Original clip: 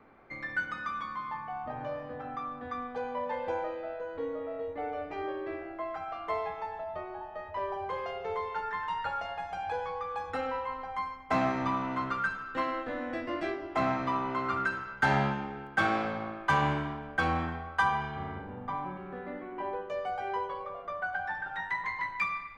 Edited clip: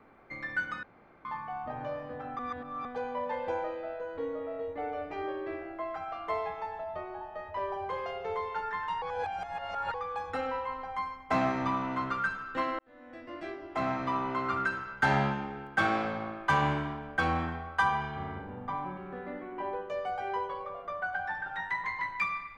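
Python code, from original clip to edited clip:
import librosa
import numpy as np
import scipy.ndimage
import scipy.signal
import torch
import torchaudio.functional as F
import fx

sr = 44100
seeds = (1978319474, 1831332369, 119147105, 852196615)

y = fx.edit(x, sr, fx.room_tone_fill(start_s=0.83, length_s=0.42),
    fx.reverse_span(start_s=2.39, length_s=0.46),
    fx.reverse_span(start_s=9.02, length_s=0.92),
    fx.fade_in_span(start_s=12.79, length_s=1.42), tone=tone)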